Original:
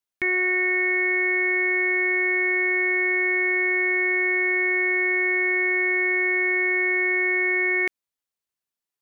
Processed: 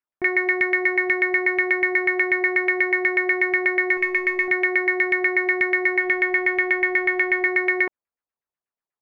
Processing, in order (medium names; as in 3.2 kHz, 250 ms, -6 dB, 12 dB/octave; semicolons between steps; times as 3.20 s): 3.97–4.48 s: overdrive pedal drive 22 dB, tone 1.6 kHz, clips at -15.5 dBFS; 5.99–7.46 s: hum notches 60/120/180/240/300/360 Hz; in parallel at -7.5 dB: bit crusher 4-bit; on the sum: LFO low-pass saw down 8.2 Hz 590–2200 Hz; trim -2.5 dB